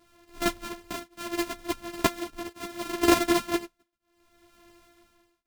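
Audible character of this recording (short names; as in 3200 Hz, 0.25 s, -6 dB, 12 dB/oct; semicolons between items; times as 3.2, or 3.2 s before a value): a buzz of ramps at a fixed pitch in blocks of 128 samples; tremolo triangle 0.69 Hz, depth 100%; a shimmering, thickened sound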